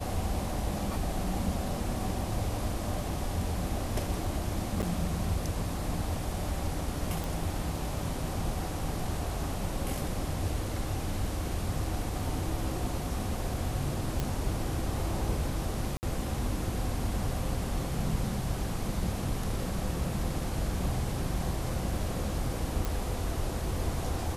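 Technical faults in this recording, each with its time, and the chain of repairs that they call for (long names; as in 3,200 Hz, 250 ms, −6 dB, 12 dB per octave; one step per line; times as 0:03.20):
0:04.82–0:04.83: drop-out 8.3 ms
0:07.24: click
0:14.20: click −16 dBFS
0:15.97–0:16.03: drop-out 59 ms
0:22.85: click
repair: click removal
repair the gap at 0:04.82, 8.3 ms
repair the gap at 0:15.97, 59 ms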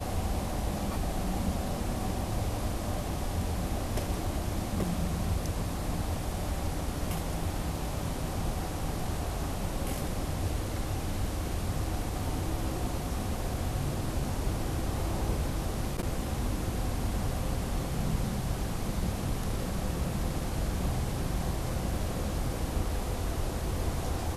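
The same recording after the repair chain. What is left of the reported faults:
none of them is left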